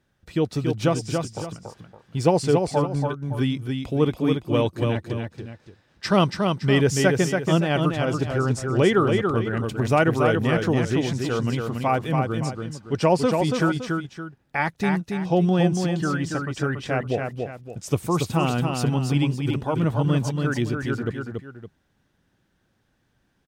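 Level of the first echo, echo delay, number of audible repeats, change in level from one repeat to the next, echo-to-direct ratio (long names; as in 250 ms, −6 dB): −4.5 dB, 282 ms, 2, −9.0 dB, −4.0 dB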